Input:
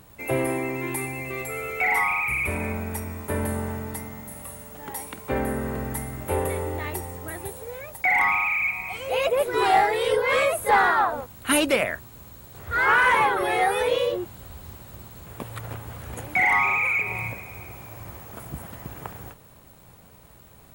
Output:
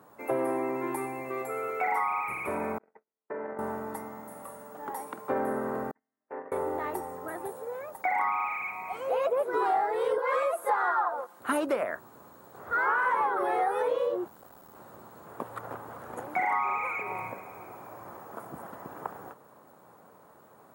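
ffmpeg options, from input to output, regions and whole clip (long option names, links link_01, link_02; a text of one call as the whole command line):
ffmpeg -i in.wav -filter_complex "[0:a]asettb=1/sr,asplit=3[link_01][link_02][link_03];[link_01]atrim=end=2.784[link_04];[link_02]atrim=start=2.78:end=3.59,asetpts=PTS-STARTPTS,afade=type=in:duration=0.004:curve=qsin,afade=type=out:start_time=0.806:duration=0.004:curve=qsin,agate=range=-56dB:threshold=-27dB:ratio=16:release=100:detection=peak,highpass=210,equalizer=frequency=240:width_type=q:width=4:gain=-5,equalizer=frequency=450:width_type=q:width=4:gain=4,equalizer=frequency=1100:width_type=q:width=4:gain=-4,equalizer=frequency=2000:width_type=q:width=4:gain=6,lowpass=frequency=2500:width=0.5412,lowpass=frequency=2500:width=1.3066,acompressor=threshold=-32dB:ratio=4:attack=3.2:release=140:knee=1:detection=peak[link_05];[link_03]atrim=start=3.586[link_06];[link_04][link_05]acrossfade=duration=0.004:curve1=hsin:curve2=qsin[link_07];[link_07][link_06]acrossfade=duration=0.004:curve1=qsin:curve2=hsin,asettb=1/sr,asplit=3[link_08][link_09][link_10];[link_08]atrim=end=5.914[link_11];[link_09]atrim=start=5.91:end=6.52,asetpts=PTS-STARTPTS,afade=type=in:duration=0.004:curve=qsin,afade=type=out:start_time=0.606:duration=0.004:curve=qsin,agate=range=-47dB:threshold=-25dB:ratio=16:release=100:detection=peak,acompressor=threshold=-43dB:ratio=1.5:attack=3.2:release=140:knee=1:detection=peak,highpass=230,equalizer=frequency=250:width_type=q:width=4:gain=5,equalizer=frequency=370:width_type=q:width=4:gain=-7,equalizer=frequency=550:width_type=q:width=4:gain=-3,equalizer=frequency=840:width_type=q:width=4:gain=-5,equalizer=frequency=1300:width_type=q:width=4:gain=-4,equalizer=frequency=1800:width_type=q:width=4:gain=8,lowpass=frequency=2400:width=0.5412,lowpass=frequency=2400:width=1.3066[link_12];[link_10]atrim=start=6.516[link_13];[link_11][link_12]acrossfade=duration=0.004:curve1=hsin:curve2=qsin[link_14];[link_14][link_13]acrossfade=duration=0.004:curve1=qsin:curve2=hsin,asettb=1/sr,asplit=3[link_15][link_16][link_17];[link_15]atrim=end=10.184[link_18];[link_16]atrim=start=10.18:end=11.4,asetpts=PTS-STARTPTS,afade=type=in:duration=0.004:curve=qsin,afade=type=out:start_time=1.216:duration=0.004:curve=qsin,highpass=270,lowshelf=frequency=440:gain=-7.5,aecho=1:1:5.7:0.56,atrim=end_sample=53802[link_19];[link_17]atrim=start=11.396[link_20];[link_18][link_19]acrossfade=duration=0.004:curve1=hsin:curve2=qsin[link_21];[link_21][link_20]acrossfade=duration=0.004:curve1=qsin:curve2=hsin,asettb=1/sr,asplit=3[link_22][link_23][link_24];[link_22]atrim=end=14.284[link_25];[link_23]atrim=start=14.28:end=14.75,asetpts=PTS-STARTPTS,afade=type=in:duration=0.004:curve=qsin,afade=type=out:start_time=0.466:duration=0.004:curve=qsin,highshelf=frequency=5300:gain=5.5,aeval=exprs='max(val(0),0)':channel_layout=same[link_26];[link_24]atrim=start=14.746[link_27];[link_25][link_26]acrossfade=duration=0.004:curve1=hsin:curve2=qsin[link_28];[link_28][link_27]acrossfade=duration=0.004:curve1=qsin:curve2=hsin,highpass=280,highshelf=frequency=1800:width_type=q:width=1.5:gain=-11.5,acompressor=threshold=-25dB:ratio=4" out.wav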